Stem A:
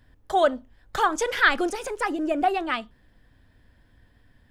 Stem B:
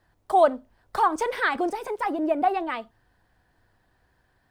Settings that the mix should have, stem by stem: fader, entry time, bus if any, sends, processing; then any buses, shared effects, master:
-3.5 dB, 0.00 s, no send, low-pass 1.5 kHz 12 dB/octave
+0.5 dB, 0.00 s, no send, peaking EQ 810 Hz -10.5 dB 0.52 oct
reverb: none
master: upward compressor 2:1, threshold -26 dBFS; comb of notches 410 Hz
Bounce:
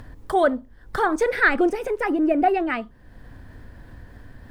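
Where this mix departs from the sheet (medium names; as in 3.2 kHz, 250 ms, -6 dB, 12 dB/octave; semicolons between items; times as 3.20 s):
stem A -3.5 dB -> +3.5 dB; master: missing comb of notches 410 Hz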